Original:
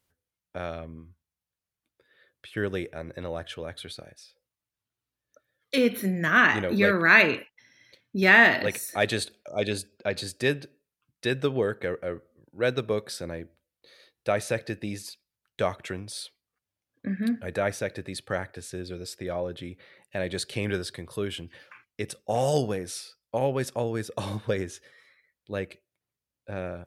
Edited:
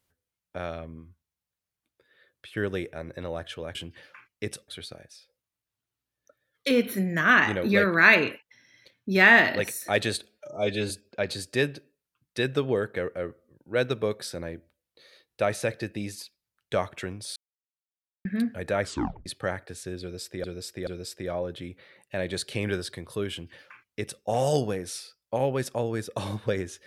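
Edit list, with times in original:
9.37–9.77 s: stretch 1.5×
16.23–17.12 s: mute
17.69 s: tape stop 0.44 s
18.88–19.31 s: loop, 3 plays
21.32–22.25 s: copy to 3.75 s

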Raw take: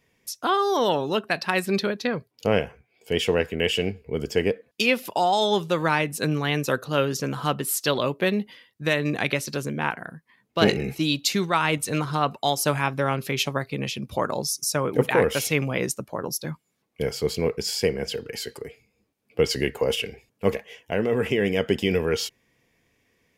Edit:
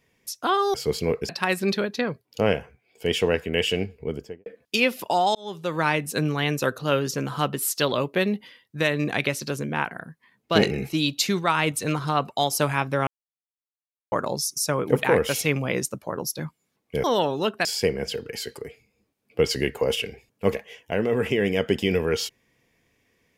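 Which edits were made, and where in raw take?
0.74–1.35 s: swap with 17.10–17.65 s
4.02–4.52 s: studio fade out
5.41–5.95 s: fade in
13.13–14.18 s: mute

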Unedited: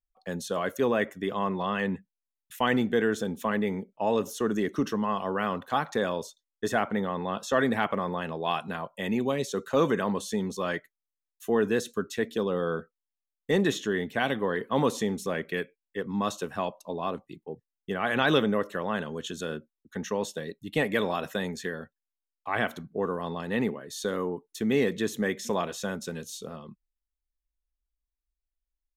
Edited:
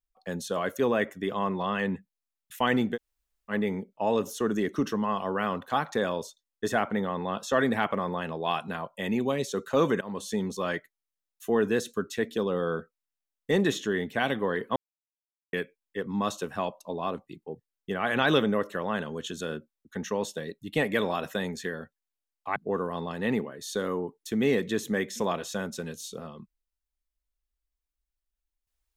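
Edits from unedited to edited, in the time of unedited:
2.95–3.51 s: room tone, crossfade 0.06 s
10.01–10.40 s: fade in equal-power, from -22 dB
14.76–15.53 s: mute
22.56–22.85 s: delete

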